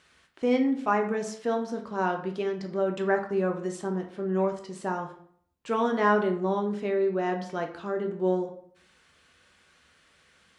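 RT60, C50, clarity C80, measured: 0.60 s, 9.0 dB, 13.5 dB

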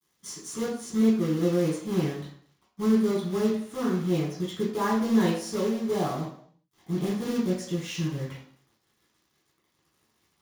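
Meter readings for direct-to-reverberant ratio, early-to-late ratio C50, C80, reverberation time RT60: -7.5 dB, 4.0 dB, 8.0 dB, 0.60 s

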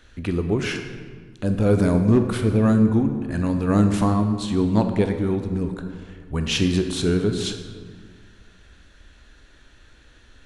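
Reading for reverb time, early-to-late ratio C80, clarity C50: 1.7 s, 9.0 dB, 7.5 dB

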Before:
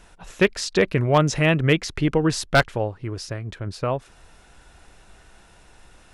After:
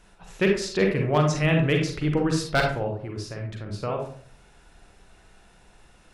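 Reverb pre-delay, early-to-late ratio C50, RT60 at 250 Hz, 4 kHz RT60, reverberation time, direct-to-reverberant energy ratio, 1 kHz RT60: 37 ms, 4.0 dB, 0.60 s, 0.25 s, 0.50 s, 1.0 dB, 0.45 s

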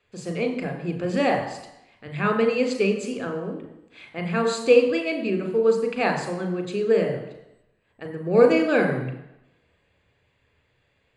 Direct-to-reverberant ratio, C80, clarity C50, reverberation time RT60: 5.0 dB, 10.0 dB, 8.0 dB, 0.85 s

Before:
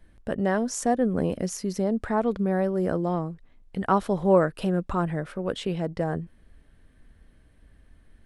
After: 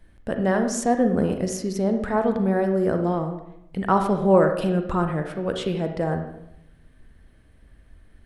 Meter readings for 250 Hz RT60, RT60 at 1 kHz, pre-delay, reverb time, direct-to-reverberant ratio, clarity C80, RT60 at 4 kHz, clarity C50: 1.0 s, 0.80 s, 35 ms, 0.80 s, 5.5 dB, 10.0 dB, 0.65 s, 7.0 dB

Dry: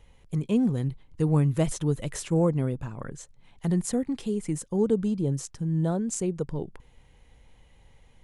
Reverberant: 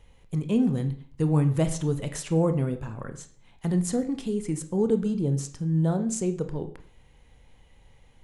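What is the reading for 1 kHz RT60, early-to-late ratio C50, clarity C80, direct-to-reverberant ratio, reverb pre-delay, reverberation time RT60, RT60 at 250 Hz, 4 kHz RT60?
0.45 s, 12.5 dB, 16.5 dB, 8.0 dB, 20 ms, 0.45 s, 0.50 s, 0.45 s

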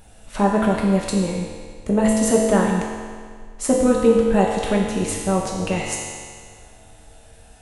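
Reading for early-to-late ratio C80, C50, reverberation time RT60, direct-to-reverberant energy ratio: 2.5 dB, 0.5 dB, 1.9 s, -3.0 dB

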